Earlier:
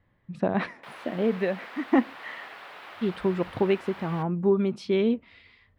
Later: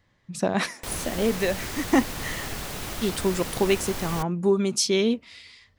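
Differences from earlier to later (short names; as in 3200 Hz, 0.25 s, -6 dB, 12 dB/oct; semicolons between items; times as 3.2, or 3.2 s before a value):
background: remove HPF 860 Hz 12 dB/oct; master: remove air absorption 470 m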